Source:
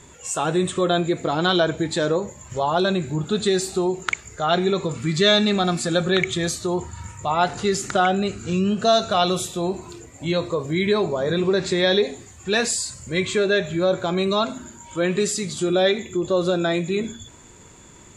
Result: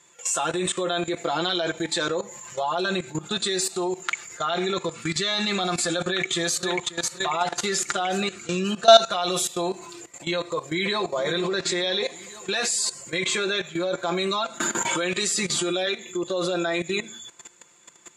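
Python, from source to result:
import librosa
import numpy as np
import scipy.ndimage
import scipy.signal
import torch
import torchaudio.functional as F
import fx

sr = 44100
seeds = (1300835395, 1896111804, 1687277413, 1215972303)

y = fx.echo_throw(x, sr, start_s=6.03, length_s=0.61, ms=540, feedback_pct=50, wet_db=-6.5)
y = fx.echo_throw(y, sr, start_s=10.38, length_s=0.78, ms=470, feedback_pct=70, wet_db=-15.0)
y = fx.band_squash(y, sr, depth_pct=100, at=(14.6, 15.87))
y = fx.highpass(y, sr, hz=930.0, slope=6)
y = y + 0.7 * np.pad(y, (int(5.8 * sr / 1000.0), 0))[:len(y)]
y = fx.level_steps(y, sr, step_db=16)
y = y * 10.0 ** (7.0 / 20.0)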